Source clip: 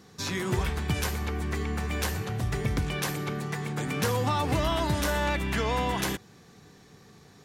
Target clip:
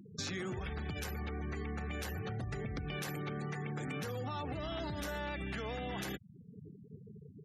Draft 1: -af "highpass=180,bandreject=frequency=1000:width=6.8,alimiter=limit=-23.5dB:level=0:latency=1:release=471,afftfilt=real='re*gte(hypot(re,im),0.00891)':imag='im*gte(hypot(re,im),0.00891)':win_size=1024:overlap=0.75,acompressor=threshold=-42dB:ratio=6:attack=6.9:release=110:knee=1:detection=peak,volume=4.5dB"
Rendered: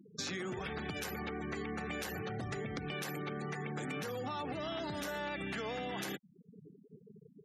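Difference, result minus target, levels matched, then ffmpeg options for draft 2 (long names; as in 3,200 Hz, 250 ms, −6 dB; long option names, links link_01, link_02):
125 Hz band −4.5 dB
-af "highpass=60,bandreject=frequency=1000:width=6.8,alimiter=limit=-23.5dB:level=0:latency=1:release=471,afftfilt=real='re*gte(hypot(re,im),0.00891)':imag='im*gte(hypot(re,im),0.00891)':win_size=1024:overlap=0.75,acompressor=threshold=-42dB:ratio=6:attack=6.9:release=110:knee=1:detection=peak,volume=4.5dB"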